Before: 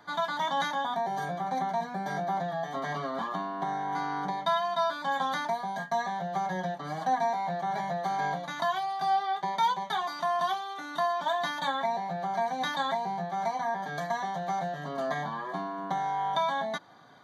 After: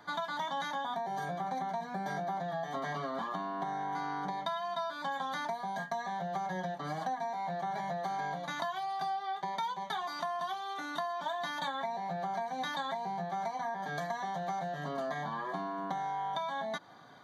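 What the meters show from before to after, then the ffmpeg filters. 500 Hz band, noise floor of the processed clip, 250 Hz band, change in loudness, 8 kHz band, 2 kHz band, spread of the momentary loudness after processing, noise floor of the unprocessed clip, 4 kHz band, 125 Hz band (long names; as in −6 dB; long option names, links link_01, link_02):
−5.5 dB, −43 dBFS, −4.0 dB, −5.5 dB, −5.0 dB, −5.0 dB, 2 LU, −40 dBFS, −5.5 dB, −4.0 dB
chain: -af "acompressor=threshold=-33dB:ratio=6"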